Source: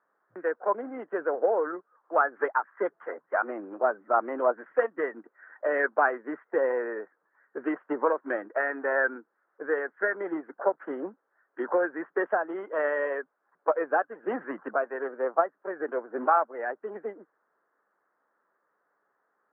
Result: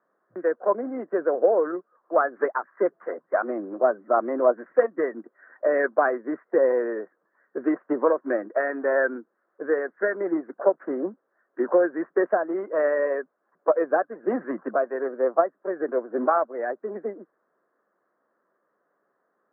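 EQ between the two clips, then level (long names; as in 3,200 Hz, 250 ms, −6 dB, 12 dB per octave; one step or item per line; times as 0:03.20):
high-frequency loss of the air 150 metres
loudspeaker in its box 260–2,400 Hz, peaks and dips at 290 Hz −4 dB, 440 Hz −5 dB, 860 Hz −9 dB, 1,400 Hz −4 dB
spectral tilt −4 dB per octave
+5.5 dB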